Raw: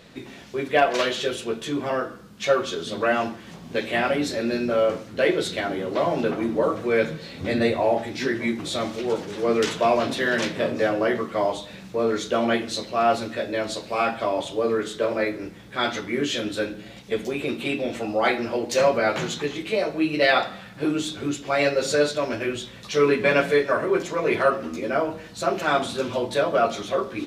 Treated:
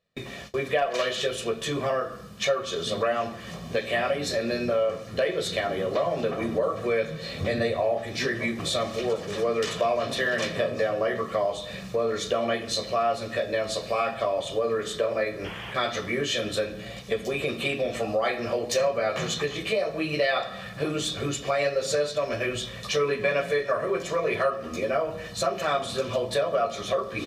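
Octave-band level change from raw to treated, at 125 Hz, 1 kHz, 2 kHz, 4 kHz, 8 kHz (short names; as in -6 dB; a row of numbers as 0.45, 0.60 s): -0.5, -4.0, -3.5, -0.5, +0.5 dB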